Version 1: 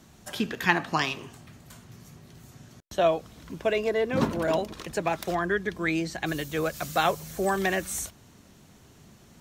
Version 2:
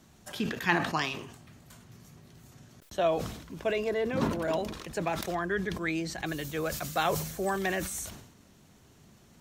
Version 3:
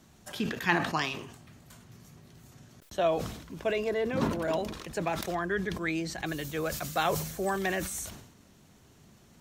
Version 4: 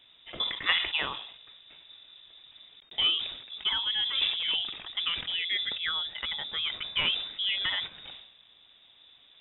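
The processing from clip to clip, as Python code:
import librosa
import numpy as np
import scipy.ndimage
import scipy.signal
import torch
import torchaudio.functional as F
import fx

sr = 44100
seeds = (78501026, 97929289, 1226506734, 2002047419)

y1 = fx.sustainer(x, sr, db_per_s=68.0)
y1 = y1 * 10.0 ** (-4.5 / 20.0)
y2 = y1
y3 = fx.freq_invert(y2, sr, carrier_hz=3700)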